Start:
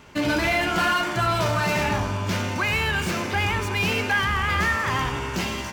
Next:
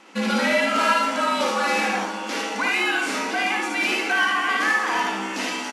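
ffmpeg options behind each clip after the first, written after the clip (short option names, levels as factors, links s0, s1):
-af "afreqshift=-81,afftfilt=real='re*between(b*sr/4096,190,12000)':imag='im*between(b*sr/4096,190,12000)':win_size=4096:overlap=0.75,aecho=1:1:55|75:0.631|0.596"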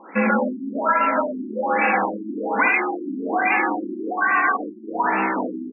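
-af "equalizer=f=75:t=o:w=2.2:g=-11.5,acompressor=threshold=0.0708:ratio=6,afftfilt=real='re*lt(b*sr/1024,360*pow(2800/360,0.5+0.5*sin(2*PI*1.2*pts/sr)))':imag='im*lt(b*sr/1024,360*pow(2800/360,0.5+0.5*sin(2*PI*1.2*pts/sr)))':win_size=1024:overlap=0.75,volume=2.82"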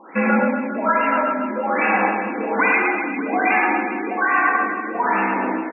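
-af "aecho=1:1:110|242|400.4|590.5|818.6:0.631|0.398|0.251|0.158|0.1"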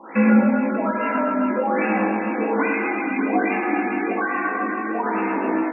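-filter_complex "[0:a]acrossover=split=480[s0][s1];[s1]acompressor=threshold=0.0398:ratio=4[s2];[s0][s2]amix=inputs=2:normalize=0,flanger=delay=18:depth=2.1:speed=0.38,volume=2"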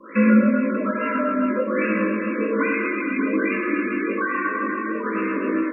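-af "asuperstop=centerf=790:order=20:qfactor=2.1"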